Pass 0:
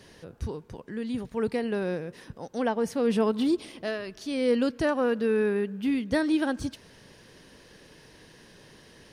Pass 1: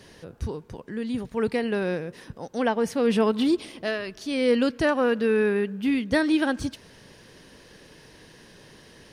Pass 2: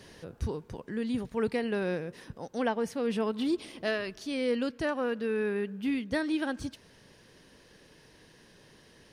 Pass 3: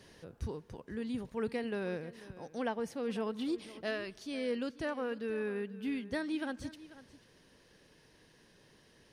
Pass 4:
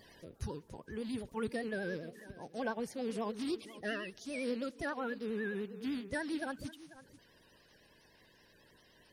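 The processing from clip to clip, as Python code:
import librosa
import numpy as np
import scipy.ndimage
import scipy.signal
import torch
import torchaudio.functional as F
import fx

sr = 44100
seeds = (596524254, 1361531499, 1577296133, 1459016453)

y1 = fx.dynamic_eq(x, sr, hz=2400.0, q=0.77, threshold_db=-42.0, ratio=4.0, max_db=4)
y1 = F.gain(torch.from_numpy(y1), 2.5).numpy()
y2 = fx.rider(y1, sr, range_db=4, speed_s=0.5)
y2 = F.gain(torch.from_numpy(y2), -6.0).numpy()
y3 = y2 + 10.0 ** (-17.0 / 20.0) * np.pad(y2, (int(491 * sr / 1000.0), 0))[:len(y2)]
y3 = F.gain(torch.from_numpy(y3), -6.0).numpy()
y4 = fx.spec_quant(y3, sr, step_db=30)
y4 = fx.high_shelf(y4, sr, hz=7700.0, db=6.5)
y4 = fx.vibrato(y4, sr, rate_hz=10.0, depth_cents=83.0)
y4 = F.gain(torch.from_numpy(y4), -1.0).numpy()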